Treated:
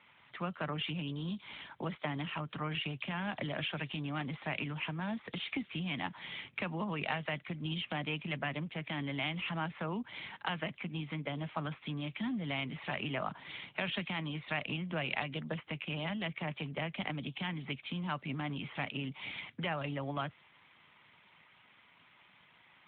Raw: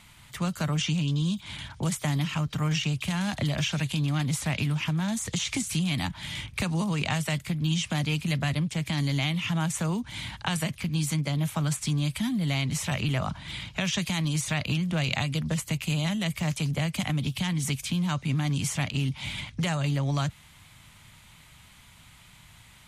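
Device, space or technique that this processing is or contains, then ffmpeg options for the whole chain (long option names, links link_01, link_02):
telephone: -af "highpass=280,lowpass=3100,volume=-3dB" -ar 8000 -c:a libopencore_amrnb -b:a 12200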